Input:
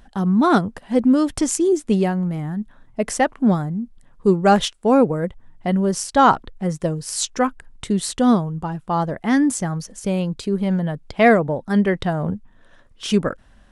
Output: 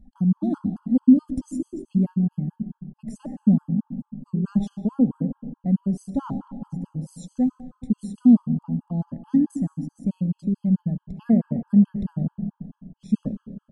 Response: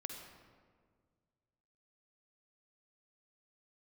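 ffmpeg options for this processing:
-filter_complex "[0:a]firequalizer=gain_entry='entry(130,0);entry(250,5);entry(360,-14);entry(660,-14);entry(1400,-28);entry(7900,-19)':delay=0.05:min_phase=1,asplit=2[link_01][link_02];[1:a]atrim=start_sample=2205,asetrate=33075,aresample=44100[link_03];[link_02][link_03]afir=irnorm=-1:irlink=0,volume=-2.5dB[link_04];[link_01][link_04]amix=inputs=2:normalize=0,afftfilt=real='re*gt(sin(2*PI*4.6*pts/sr)*(1-2*mod(floor(b*sr/1024/850),2)),0)':imag='im*gt(sin(2*PI*4.6*pts/sr)*(1-2*mod(floor(b*sr/1024/850),2)),0)':win_size=1024:overlap=0.75,volume=-5dB"

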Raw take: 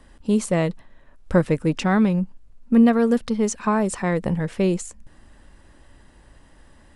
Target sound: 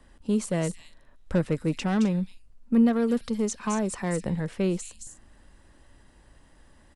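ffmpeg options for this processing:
ffmpeg -i in.wav -filter_complex "[0:a]acrossover=split=360|3200[link_01][link_02][link_03];[link_02]asoftclip=type=tanh:threshold=-20dB[link_04];[link_03]aecho=1:1:218.7|259.5:0.708|0.282[link_05];[link_01][link_04][link_05]amix=inputs=3:normalize=0,volume=-5dB" out.wav

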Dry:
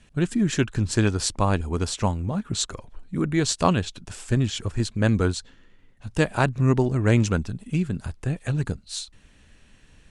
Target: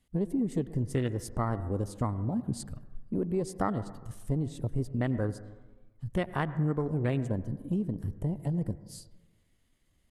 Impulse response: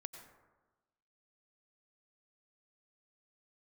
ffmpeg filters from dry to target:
-filter_complex "[0:a]afwtdn=0.0398,aemphasis=mode=production:type=50kf,asetrate=50951,aresample=44100,atempo=0.865537,acompressor=threshold=-27dB:ratio=3,asplit=2[link_01][link_02];[1:a]atrim=start_sample=2205,lowpass=2200[link_03];[link_02][link_03]afir=irnorm=-1:irlink=0,volume=0.5dB[link_04];[link_01][link_04]amix=inputs=2:normalize=0,volume=-5dB"

